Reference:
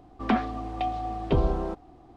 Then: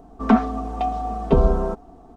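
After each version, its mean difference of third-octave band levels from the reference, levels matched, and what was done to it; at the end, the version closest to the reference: 3.5 dB: band shelf 2900 Hz -8.5 dB; comb 4.5 ms, depth 70%; gain +5.5 dB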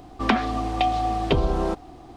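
4.5 dB: compressor, threshold -25 dBFS, peak gain reduction 7.5 dB; high shelf 2400 Hz +9.5 dB; gain +7.5 dB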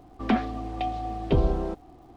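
1.0 dB: dynamic EQ 1100 Hz, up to -5 dB, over -44 dBFS, Q 1.3; crackle 240/s -58 dBFS; gain +1.5 dB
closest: third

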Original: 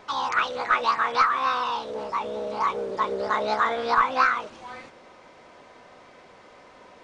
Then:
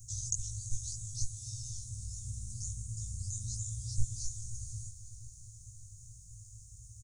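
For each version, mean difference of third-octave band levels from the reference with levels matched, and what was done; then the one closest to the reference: 23.5 dB: Chebyshev band-stop 120–6600 Hz, order 5; doubler 19 ms -3 dB; diffused feedback echo 0.495 s, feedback 47%, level -13 dB; gain +16 dB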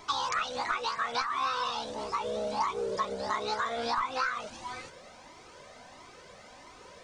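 5.5 dB: tone controls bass +3 dB, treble +11 dB; compressor 5:1, threshold -26 dBFS, peak gain reduction 10.5 dB; cascading flanger rising 1.5 Hz; gain +2.5 dB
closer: second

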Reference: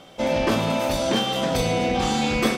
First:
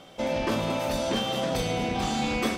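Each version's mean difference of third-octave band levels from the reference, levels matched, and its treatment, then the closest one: 1.5 dB: echo with dull and thin repeats by turns 0.219 s, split 1200 Hz, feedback 63%, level -7.5 dB; in parallel at -1 dB: compressor, threshold -28 dBFS, peak gain reduction 12 dB; on the sum: gain -8 dB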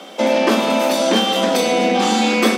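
4.5 dB: steep high-pass 190 Hz 96 dB/oct; in parallel at +1 dB: compressor, threshold -30 dBFS, peak gain reduction 13 dB; on the sum: gain +4 dB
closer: first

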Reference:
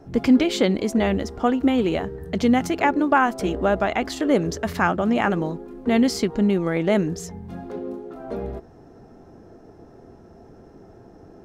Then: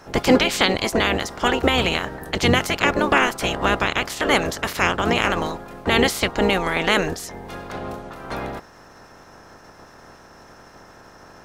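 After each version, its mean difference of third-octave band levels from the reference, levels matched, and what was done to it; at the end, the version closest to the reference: 9.0 dB: spectral limiter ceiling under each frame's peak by 25 dB; gain +1 dB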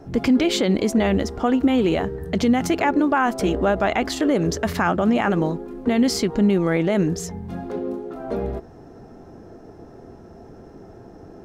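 2.0 dB: limiter -14 dBFS, peak gain reduction 7.5 dB; gain +4 dB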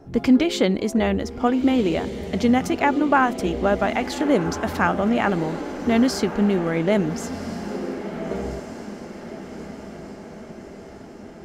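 5.5 dB: diffused feedback echo 1.386 s, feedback 58%, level -12 dB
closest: second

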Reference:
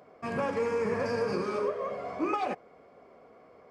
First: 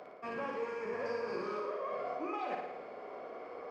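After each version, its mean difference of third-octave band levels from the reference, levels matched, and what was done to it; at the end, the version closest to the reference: 6.0 dB: three-band isolator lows -14 dB, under 270 Hz, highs -15 dB, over 5400 Hz; reverse; compressor 5:1, threshold -47 dBFS, peak gain reduction 19 dB; reverse; flutter echo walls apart 9.7 m, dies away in 0.81 s; gain +8 dB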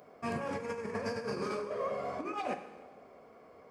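4.5 dB: high shelf 7600 Hz +9 dB; negative-ratio compressor -32 dBFS, ratio -0.5; plate-style reverb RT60 1.3 s, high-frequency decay 0.9×, DRR 7.5 dB; gain -4 dB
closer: second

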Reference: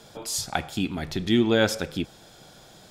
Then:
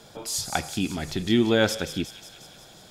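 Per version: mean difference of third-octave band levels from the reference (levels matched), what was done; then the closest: 2.0 dB: thin delay 0.18 s, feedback 65%, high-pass 3600 Hz, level -7.5 dB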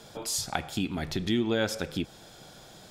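3.5 dB: compressor 2:1, threshold -28 dBFS, peak gain reduction 7 dB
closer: first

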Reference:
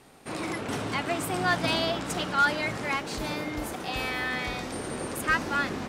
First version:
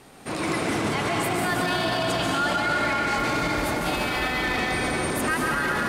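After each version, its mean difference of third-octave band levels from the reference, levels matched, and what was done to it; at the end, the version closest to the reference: 4.0 dB: plate-style reverb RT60 4.9 s, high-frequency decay 0.6×, pre-delay 0.11 s, DRR -3.5 dB; limiter -21 dBFS, peak gain reduction 12 dB; gain +5 dB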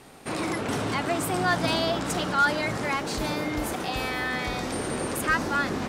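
1.5 dB: dynamic EQ 2600 Hz, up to -4 dB, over -40 dBFS, Q 1.4; in parallel at -1.5 dB: limiter -27 dBFS, peak gain reduction 11.5 dB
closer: second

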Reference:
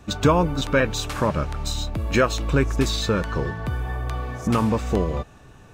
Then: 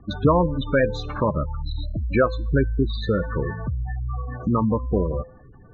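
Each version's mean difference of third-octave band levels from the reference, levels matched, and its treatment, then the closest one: 13.5 dB: spectral gate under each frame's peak -15 dB strong; LPF 3000 Hz 12 dB/oct; resonator 510 Hz, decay 0.46 s, mix 60%; gain +8 dB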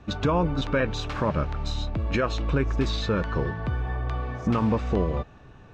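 4.0 dB: high shelf 7300 Hz +6 dB; limiter -12.5 dBFS, peak gain reduction 7 dB; air absorption 200 m; gain -1 dB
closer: second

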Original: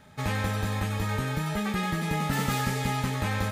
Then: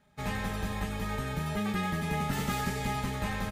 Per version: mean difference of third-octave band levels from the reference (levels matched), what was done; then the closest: 2.5 dB: octaver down 1 oct, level -4 dB; comb 4.9 ms, depth 42%; in parallel at -3 dB: limiter -22 dBFS, peak gain reduction 8 dB; on the sum: upward expander 1.5:1, over -44 dBFS; gain -7 dB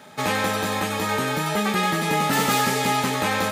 4.5 dB: in parallel at -10 dB: soft clip -27 dBFS, distortion -12 dB; on the sum: HPF 270 Hz 12 dB/oct; bell 1800 Hz -2.5 dB; gain +8.5 dB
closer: first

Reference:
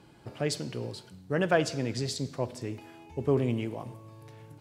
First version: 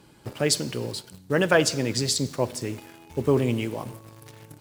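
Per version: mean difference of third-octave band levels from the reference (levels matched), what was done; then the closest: 3.5 dB: high shelf 6600 Hz +10 dB; notch 700 Hz, Q 12; harmonic-percussive split percussive +4 dB; in parallel at -6 dB: bit-crush 7-bit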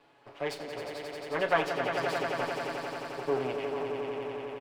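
10.0 dB: minimum comb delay 7.1 ms; three-band isolator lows -17 dB, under 360 Hz, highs -13 dB, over 3700 Hz; doubler 31 ms -12.5 dB; on a send: swelling echo 89 ms, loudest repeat 5, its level -9 dB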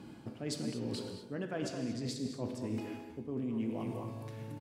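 7.0 dB: bell 240 Hz +12.5 dB 0.76 oct; speakerphone echo 0.22 s, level -9 dB; reverse; compressor 10:1, threshold -36 dBFS, peak gain reduction 21 dB; reverse; non-linear reverb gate 0.26 s flat, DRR 5.5 dB; gain +1 dB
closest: first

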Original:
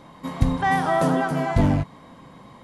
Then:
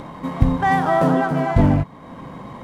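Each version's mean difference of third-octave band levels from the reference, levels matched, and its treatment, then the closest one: 3.0 dB: median filter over 9 samples; in parallel at 0 dB: upward compressor, threshold -24 dBFS; on the sum: high shelf 3300 Hz -7 dB; gain -2 dB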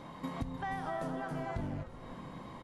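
6.5 dB: high shelf 5600 Hz -4.5 dB; compressor 6:1, threshold -35 dBFS, peak gain reduction 21 dB; on a send: frequency-shifting echo 0.304 s, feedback 61%, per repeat -140 Hz, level -13 dB; on the sum: gain -1.5 dB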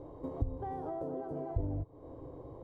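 10.5 dB: EQ curve 110 Hz 0 dB, 210 Hz -21 dB, 300 Hz +4 dB, 450 Hz +8 dB, 2000 Hz -23 dB; compressor 5:1, threshold -37 dBFS, peak gain reduction 20.5 dB; low shelf 200 Hz +10 dB; gain -3 dB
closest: first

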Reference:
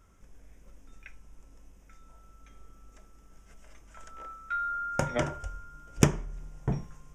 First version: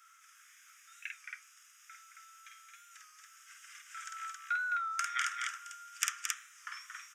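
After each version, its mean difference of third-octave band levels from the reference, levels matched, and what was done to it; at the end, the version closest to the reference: 19.0 dB: steep high-pass 1200 Hz 96 dB/oct; compressor 2.5:1, threshold -42 dBFS, peak gain reduction 12 dB; loudspeakers at several distances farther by 17 m -3 dB, 76 m -6 dB, 93 m -3 dB; record warp 33 1/3 rpm, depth 100 cents; gain +7 dB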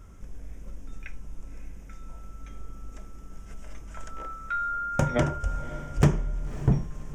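4.5 dB: in parallel at 0 dB: compressor, threshold -44 dBFS, peak gain reduction 27.5 dB; on the sum: hard clip -17.5 dBFS, distortion -9 dB; low shelf 380 Hz +8 dB; diffused feedback echo 0.566 s, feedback 41%, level -14.5 dB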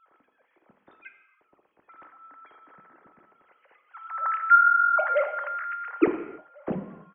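12.0 dB: sine-wave speech; bell 3000 Hz -6.5 dB 0.64 oct; outdoor echo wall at 240 m, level -26 dB; non-linear reverb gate 0.35 s falling, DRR 7 dB; gain +7 dB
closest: second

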